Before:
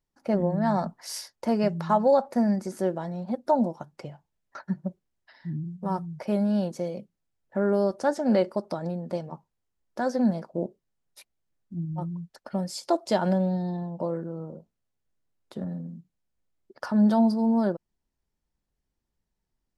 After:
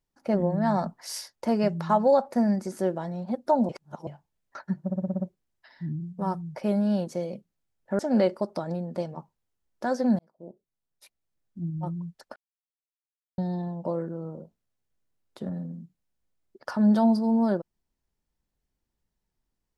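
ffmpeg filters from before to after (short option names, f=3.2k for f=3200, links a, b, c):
-filter_complex "[0:a]asplit=13[a][b][c][d][e][f][g][h][i][j][k][l][m];[a]atrim=end=3.692[n];[b]atrim=start=3.688:end=4.072,asetpts=PTS-STARTPTS,areverse[o];[c]atrim=start=4.068:end=4.902[p];[d]atrim=start=4.838:end=4.902[q];[e]atrim=start=4.838:end=4.902[r];[f]atrim=start=4.838:end=4.902[s];[g]atrim=start=4.838:end=4.902[t];[h]atrim=start=4.838:end=4.902[u];[i]atrim=start=4.838:end=7.632[v];[j]atrim=start=8.138:end=10.34,asetpts=PTS-STARTPTS,afade=t=out:st=2.198:d=0.004:c=hsin[w];[k]atrim=start=10.34:end=12.51,asetpts=PTS-STARTPTS,afade=t=in:d=1.46,afade=t=out:st=2.166:d=0.004:c=hsin[x];[l]atrim=start=12.51:end=13.53,asetpts=PTS-STARTPTS,volume=0[y];[m]atrim=start=13.53,asetpts=PTS-STARTPTS,afade=t=in:d=0.004:c=hsin[z];[n][o]acrossfade=d=0.004:c1=hsin:c2=hsin[aa];[aa][p]acrossfade=d=0.004:c1=hsin:c2=hsin[ab];[ab][q]acrossfade=d=0.004:c1=hsin:c2=hsin[ac];[ac][r]acrossfade=d=0.004:c1=hsin:c2=hsin[ad];[ad][s]acrossfade=d=0.004:c1=hsin:c2=hsin[ae];[ae][t]acrossfade=d=0.004:c1=hsin:c2=hsin[af];[af][u]acrossfade=d=0.004:c1=hsin:c2=hsin[ag];[ag][v]acrossfade=d=0.004:c1=hsin:c2=hsin[ah];[w][x][y][z]concat=n=4:v=0:a=1[ai];[ah][ai]acrossfade=d=0.004:c1=hsin:c2=hsin"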